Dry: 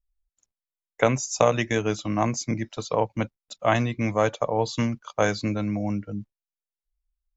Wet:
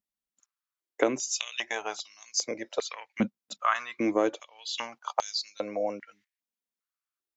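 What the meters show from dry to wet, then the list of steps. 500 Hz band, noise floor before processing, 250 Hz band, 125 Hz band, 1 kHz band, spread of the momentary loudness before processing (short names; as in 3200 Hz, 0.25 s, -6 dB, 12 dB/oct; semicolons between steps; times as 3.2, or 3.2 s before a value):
-7.0 dB, under -85 dBFS, -7.0 dB, -21.5 dB, -5.5 dB, 8 LU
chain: compressor 2.5:1, threshold -28 dBFS, peak gain reduction 10 dB; stepped high-pass 2.5 Hz 210–4700 Hz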